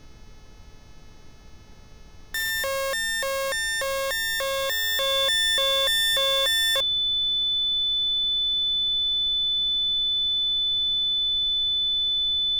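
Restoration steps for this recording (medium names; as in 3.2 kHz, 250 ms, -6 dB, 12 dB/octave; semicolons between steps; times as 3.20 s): de-hum 430.9 Hz, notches 15; band-stop 3.5 kHz, Q 30; noise print and reduce 27 dB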